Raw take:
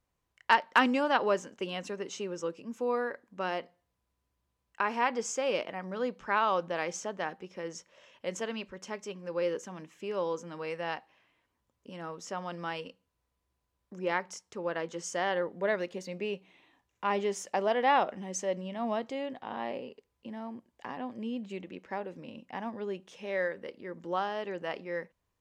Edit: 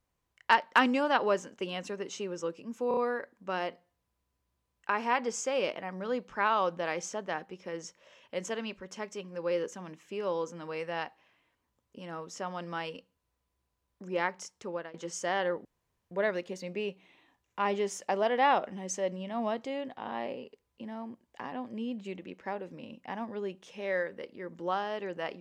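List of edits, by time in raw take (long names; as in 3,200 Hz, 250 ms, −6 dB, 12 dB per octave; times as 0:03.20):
0:02.88: stutter 0.03 s, 4 plays
0:14.59–0:14.85: fade out, to −23 dB
0:15.56: splice in room tone 0.46 s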